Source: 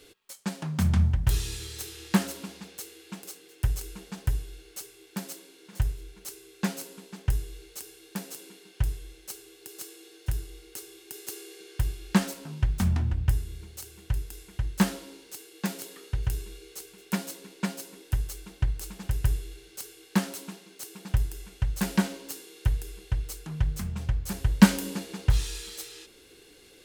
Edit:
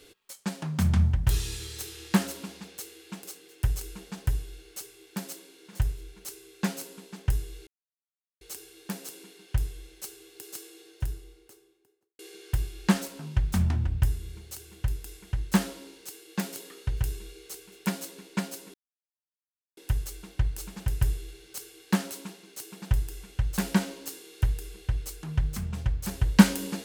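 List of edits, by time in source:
0:07.67: splice in silence 0.74 s
0:09.87–0:11.45: fade out and dull
0:18.00: splice in silence 1.03 s

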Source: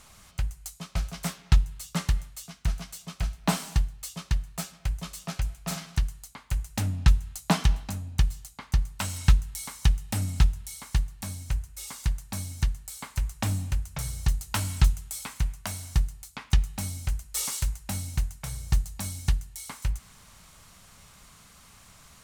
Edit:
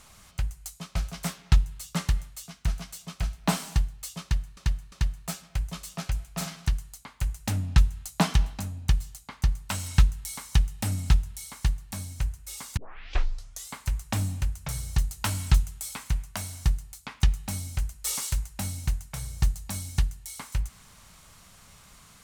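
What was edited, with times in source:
0:04.22–0:04.57: repeat, 3 plays
0:12.07: tape start 0.96 s

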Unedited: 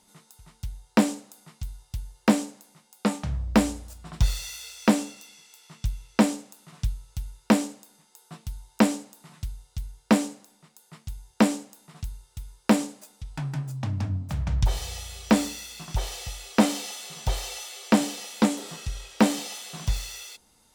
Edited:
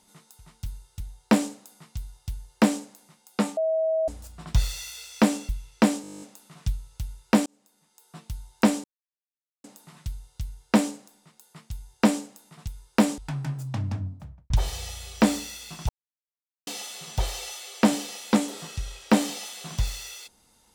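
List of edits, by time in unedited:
0:03.23–0:03.74: beep over 642 Hz −21 dBFS
0:05.15–0:05.86: remove
0:06.39: stutter 0.02 s, 11 plays
0:07.63–0:08.45: fade in
0:09.01: splice in silence 0.80 s
0:12.05–0:12.39: move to 0:00.66
0:12.89–0:13.27: remove
0:13.84–0:14.59: fade out and dull
0:15.98–0:16.76: silence

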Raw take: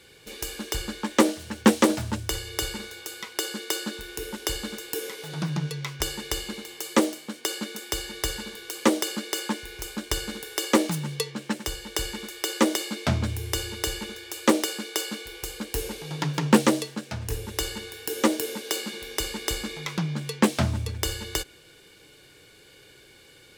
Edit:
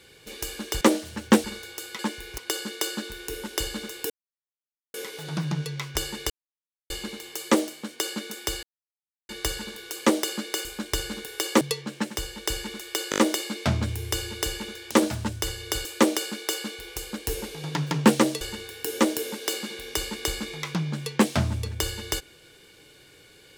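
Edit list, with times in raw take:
0:00.81–0:01.15: remove
0:01.78–0:02.72: move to 0:14.32
0:04.99: splice in silence 0.84 s
0:06.35: splice in silence 0.60 s
0:08.08: splice in silence 0.66 s
0:09.44–0:09.83: move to 0:03.27
0:10.79–0:11.10: remove
0:12.59: stutter 0.02 s, 5 plays
0:16.88–0:17.64: remove

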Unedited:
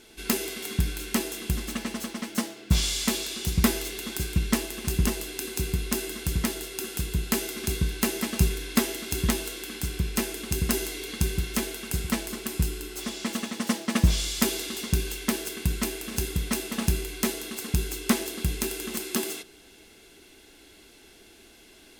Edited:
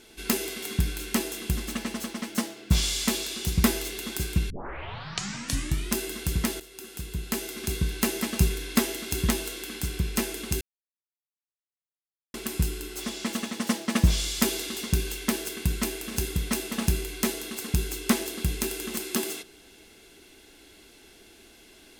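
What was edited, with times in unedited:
0:04.50: tape start 1.47 s
0:06.60–0:07.98: fade in, from −12.5 dB
0:10.61–0:12.34: silence

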